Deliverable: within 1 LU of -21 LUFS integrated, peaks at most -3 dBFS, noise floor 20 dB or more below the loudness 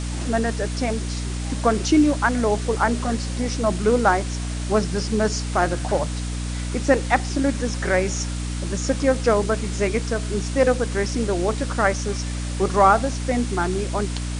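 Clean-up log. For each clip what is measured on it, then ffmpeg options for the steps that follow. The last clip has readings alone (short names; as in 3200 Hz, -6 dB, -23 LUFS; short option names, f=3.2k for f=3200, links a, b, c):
hum 60 Hz; harmonics up to 300 Hz; hum level -25 dBFS; noise floor -27 dBFS; noise floor target -43 dBFS; loudness -22.5 LUFS; peak -3.0 dBFS; loudness target -21.0 LUFS
-> -af "bandreject=f=60:t=h:w=4,bandreject=f=120:t=h:w=4,bandreject=f=180:t=h:w=4,bandreject=f=240:t=h:w=4,bandreject=f=300:t=h:w=4"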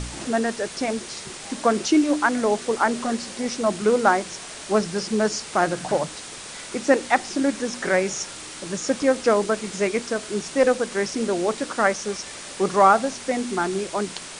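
hum none; noise floor -38 dBFS; noise floor target -43 dBFS
-> -af "afftdn=nr=6:nf=-38"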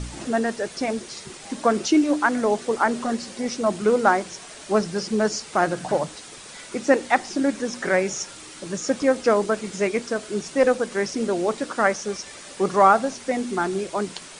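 noise floor -42 dBFS; noise floor target -43 dBFS
-> -af "afftdn=nr=6:nf=-42"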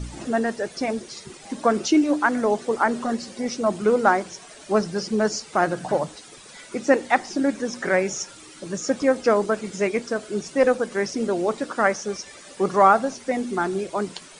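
noise floor -45 dBFS; loudness -23.0 LUFS; peak -3.5 dBFS; loudness target -21.0 LUFS
-> -af "volume=2dB,alimiter=limit=-3dB:level=0:latency=1"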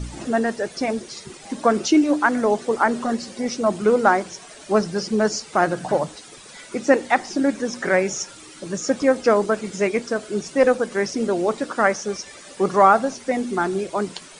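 loudness -21.0 LUFS; peak -3.0 dBFS; noise floor -43 dBFS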